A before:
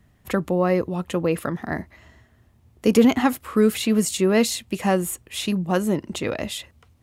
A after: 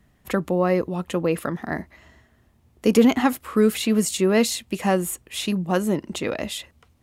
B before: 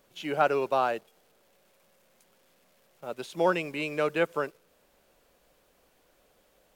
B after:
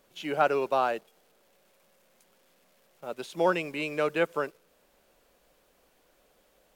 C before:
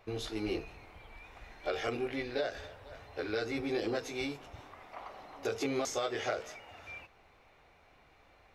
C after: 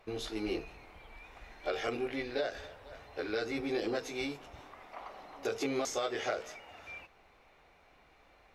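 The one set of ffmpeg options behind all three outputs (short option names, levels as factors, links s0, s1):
-af "equalizer=f=100:w=2.4:g=-7.5" -ar 44100 -c:a libmp3lame -b:a 320k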